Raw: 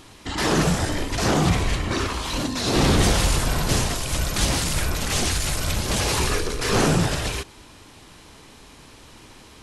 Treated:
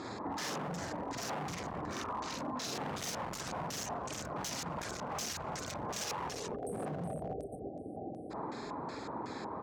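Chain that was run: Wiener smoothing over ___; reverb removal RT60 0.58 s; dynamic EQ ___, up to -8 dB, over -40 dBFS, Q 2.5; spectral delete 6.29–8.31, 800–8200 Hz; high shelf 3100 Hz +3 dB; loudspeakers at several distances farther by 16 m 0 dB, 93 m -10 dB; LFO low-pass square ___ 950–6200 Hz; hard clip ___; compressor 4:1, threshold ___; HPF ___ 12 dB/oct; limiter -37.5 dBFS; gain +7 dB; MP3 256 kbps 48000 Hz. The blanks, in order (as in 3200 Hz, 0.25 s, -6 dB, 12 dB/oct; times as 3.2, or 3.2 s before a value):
15 samples, 350 Hz, 2.7 Hz, -19.5 dBFS, -39 dBFS, 180 Hz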